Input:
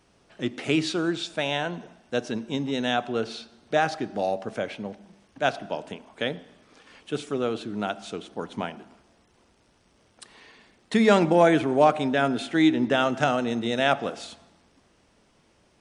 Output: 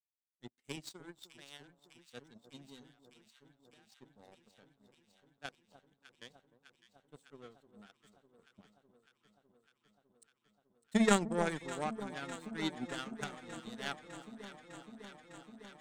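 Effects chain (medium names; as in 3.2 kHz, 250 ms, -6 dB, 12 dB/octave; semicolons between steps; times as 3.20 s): expander on every frequency bin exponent 1.5; graphic EQ with 31 bands 100 Hz -6 dB, 200 Hz +4 dB, 315 Hz -6 dB, 630 Hz -12 dB, 1 kHz -10 dB, 2.5 kHz -8 dB, 8 kHz +12 dB; 2.83–3.90 s: compression 5:1, threshold -41 dBFS, peak gain reduction 14.5 dB; power-law waveshaper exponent 2; on a send: echo whose repeats swap between lows and highs 302 ms, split 1.1 kHz, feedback 89%, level -13 dB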